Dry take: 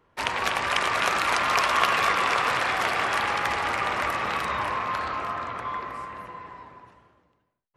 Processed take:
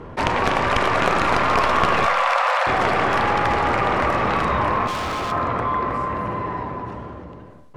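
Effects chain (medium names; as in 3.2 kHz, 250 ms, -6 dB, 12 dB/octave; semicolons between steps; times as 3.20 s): tracing distortion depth 0.092 ms; Bessel low-pass 7.9 kHz, order 2; tilt shelf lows +7 dB; 2.06–2.67 s: brick-wall FIR high-pass 490 Hz; 4.87–5.32 s: hard clipper -36 dBFS, distortion -18 dB; 6.18–6.63 s: flutter echo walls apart 11.3 m, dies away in 0.62 s; Schroeder reverb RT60 0.83 s, combs from 29 ms, DRR 13 dB; level flattener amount 50%; trim +3 dB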